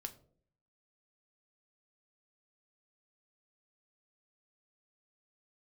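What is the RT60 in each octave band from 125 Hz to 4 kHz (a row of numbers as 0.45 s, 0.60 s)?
0.85 s, 0.75 s, 0.65 s, 0.45 s, 0.30 s, 0.30 s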